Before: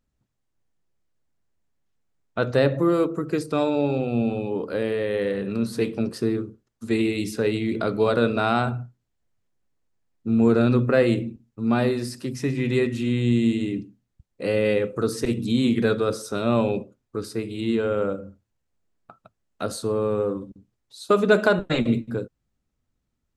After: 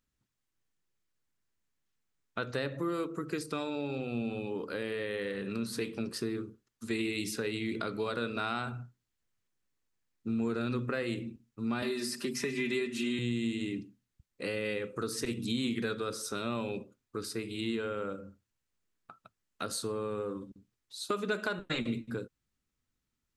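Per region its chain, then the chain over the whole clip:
0:11.82–0:13.19: high-pass filter 190 Hz + comb filter 5 ms, depth 73% + multiband upward and downward compressor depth 70%
whole clip: low-shelf EQ 340 Hz −9.5 dB; downward compressor 2.5 to 1, threshold −30 dBFS; parametric band 660 Hz −8 dB 1.1 octaves

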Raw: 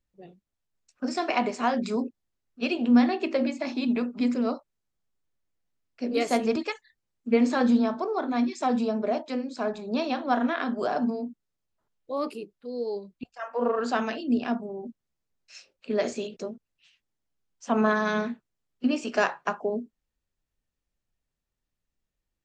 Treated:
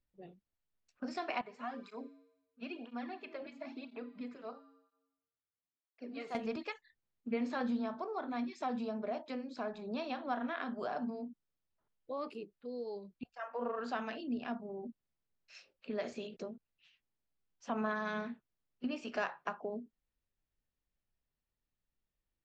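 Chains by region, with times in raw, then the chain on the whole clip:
0:01.41–0:06.35: parametric band 1,300 Hz +5 dB 2.2 octaves + tuned comb filter 92 Hz, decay 1 s, harmonics odd, mix 70% + through-zero flanger with one copy inverted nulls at 1 Hz, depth 4.4 ms
whole clip: low-pass filter 4,200 Hz 12 dB per octave; dynamic equaliser 340 Hz, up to −5 dB, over −35 dBFS, Q 1.1; downward compressor 1.5 to 1, threshold −37 dBFS; level −5 dB

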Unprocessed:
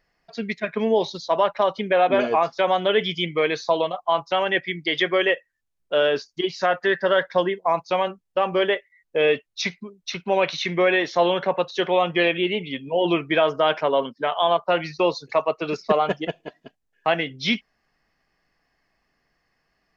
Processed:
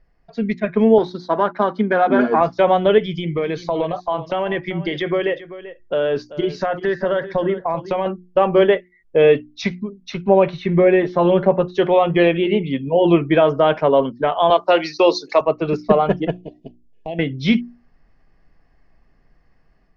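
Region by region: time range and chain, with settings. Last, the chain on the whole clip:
0:00.98–0:02.41: gain on one half-wave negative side −3 dB + loudspeaker in its box 210–5,800 Hz, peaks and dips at 230 Hz +6 dB, 570 Hz −7 dB, 1,500 Hz +9 dB, 2,700 Hz −9 dB
0:02.98–0:08.06: downward compressor 2.5 to 1, threshold −26 dBFS + single-tap delay 388 ms −15 dB
0:10.28–0:11.75: low-pass filter 1,600 Hz 6 dB per octave + comb filter 5 ms, depth 58%
0:14.50–0:15.41: high-pass filter 260 Hz 24 dB per octave + parametric band 5,300 Hz +15 dB 1.5 octaves
0:16.37–0:17.19: downward compressor 2 to 1, threshold −36 dBFS + Butterworth band-reject 1,400 Hz, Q 0.73
whole clip: spectral tilt −3.5 dB per octave; automatic gain control gain up to 5 dB; mains-hum notches 60/120/180/240/300/360 Hz

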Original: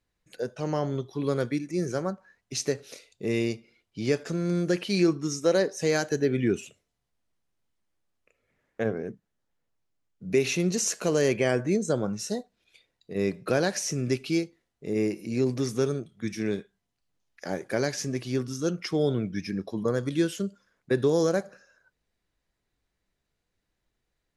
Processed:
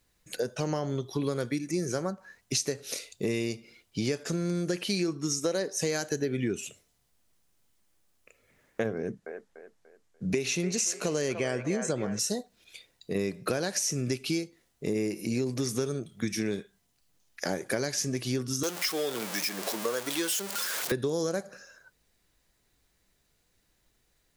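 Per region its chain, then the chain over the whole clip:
0:08.97–0:12.19: low-pass filter 9,400 Hz + delay with a band-pass on its return 293 ms, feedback 35%, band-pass 1,100 Hz, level −5 dB
0:18.63–0:20.92: converter with a step at zero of −31 dBFS + Bessel high-pass filter 620 Hz
whole clip: high-shelf EQ 5,200 Hz +10.5 dB; downward compressor 6 to 1, threshold −34 dBFS; level +7 dB

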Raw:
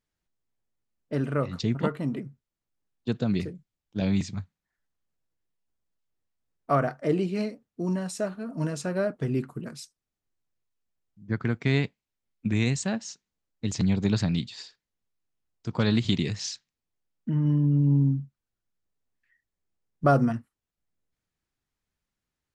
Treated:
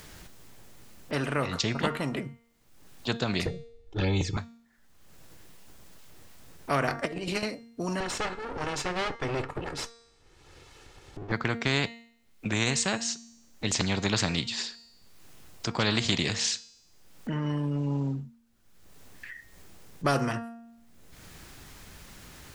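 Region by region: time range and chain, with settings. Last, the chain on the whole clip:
0:03.46–0:04.37: spectral tilt −3.5 dB per octave + comb filter 2.3 ms, depth 95% + flanger swept by the level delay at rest 3 ms, full sweep at −13 dBFS
0:06.87–0:07.43: mains-hum notches 50/100/150/200/250/300/350 Hz + compressor whose output falls as the input rises −31 dBFS, ratio −0.5
0:08.00–0:11.32: lower of the sound and its delayed copy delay 2.3 ms + high-frequency loss of the air 88 metres
whole clip: hum removal 232 Hz, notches 39; upward compression, threshold −39 dBFS; every bin compressed towards the loudest bin 2 to 1

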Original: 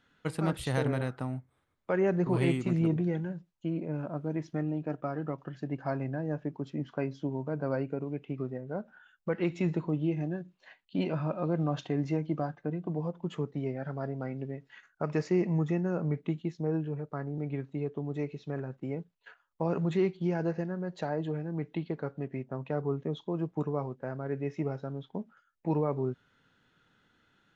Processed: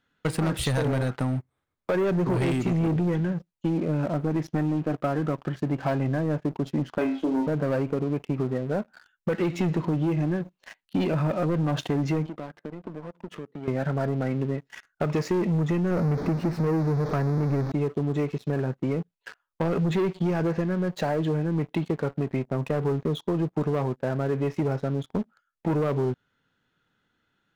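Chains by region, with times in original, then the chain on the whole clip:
0:06.98–0:07.47: Chebyshev band-pass filter 250–3,000 Hz, order 3 + flutter between parallel walls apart 4.5 metres, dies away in 0.32 s
0:12.26–0:13.68: notch filter 770 Hz, Q 5.7 + downward compressor 5 to 1, threshold −44 dBFS + band-pass filter 190–3,300 Hz
0:15.91–0:17.72: converter with a step at zero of −35.5 dBFS + moving average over 13 samples
whole clip: leveller curve on the samples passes 3; downward compressor, threshold −23 dBFS; level +1 dB

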